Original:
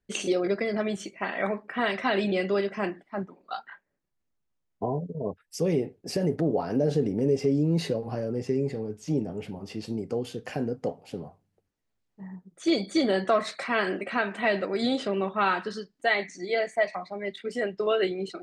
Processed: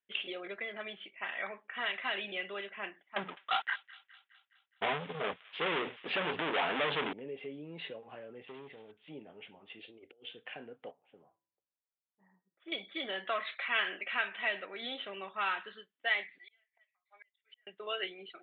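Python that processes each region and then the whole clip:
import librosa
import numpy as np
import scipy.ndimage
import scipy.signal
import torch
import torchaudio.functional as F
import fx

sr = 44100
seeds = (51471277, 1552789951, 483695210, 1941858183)

y = fx.chain(x, sr, fx.hum_notches(base_hz=60, count=4),
    fx.leveller(passes=5),
    fx.echo_wet_highpass(ms=208, feedback_pct=57, hz=2100.0, wet_db=-16), at=(3.16, 7.13))
y = fx.chain(y, sr, fx.block_float(bits=5),
    fx.tube_stage(drive_db=23.0, bias=0.4), at=(8.45, 8.92))
y = fx.chain(y, sr, fx.fixed_phaser(hz=430.0, stages=4),
    fx.over_compress(threshold_db=-37.0, ratio=-0.5), at=(9.79, 10.31))
y = fx.chain(y, sr, fx.lowpass(hz=1500.0, slope=12),
    fx.comb_fb(f0_hz=110.0, decay_s=0.54, harmonics='odd', damping=0.0, mix_pct=50), at=(10.91, 12.72))
y = fx.chain(y, sr, fx.lowpass(hz=3800.0, slope=12),
    fx.high_shelf(hz=2900.0, db=11.0), at=(13.27, 14.38))
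y = fx.chain(y, sr, fx.highpass(hz=1300.0, slope=12),
    fx.gate_flip(shuts_db=-36.0, range_db=-35), at=(16.38, 17.67))
y = scipy.signal.sosfilt(scipy.signal.butter(16, 3500.0, 'lowpass', fs=sr, output='sos'), y)
y = np.diff(y, prepend=0.0)
y = F.gain(torch.from_numpy(y), 6.5).numpy()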